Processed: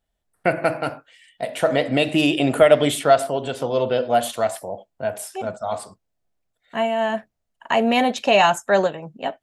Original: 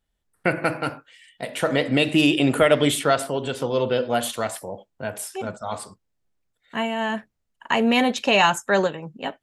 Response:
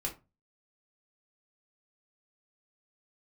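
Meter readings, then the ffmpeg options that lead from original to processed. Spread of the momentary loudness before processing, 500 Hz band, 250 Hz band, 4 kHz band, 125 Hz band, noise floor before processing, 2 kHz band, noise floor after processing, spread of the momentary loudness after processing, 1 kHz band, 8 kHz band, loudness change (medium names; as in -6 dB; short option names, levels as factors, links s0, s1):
15 LU, +4.0 dB, -1.0 dB, -1.0 dB, -1.0 dB, -76 dBFS, -1.0 dB, -76 dBFS, 14 LU, +3.5 dB, -1.0 dB, +1.5 dB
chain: -af "equalizer=f=670:w=3.2:g=9,volume=0.891"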